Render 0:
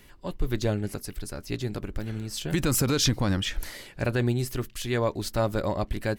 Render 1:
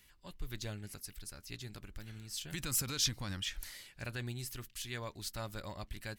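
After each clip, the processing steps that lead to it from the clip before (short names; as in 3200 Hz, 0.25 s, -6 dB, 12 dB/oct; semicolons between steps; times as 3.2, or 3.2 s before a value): passive tone stack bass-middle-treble 5-5-5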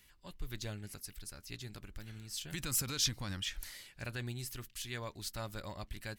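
nothing audible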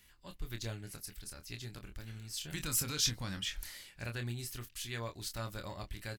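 doubler 26 ms -7 dB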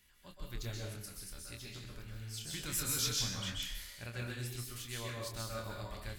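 plate-style reverb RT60 0.65 s, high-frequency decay 1×, pre-delay 0.115 s, DRR -2 dB; gain -4.5 dB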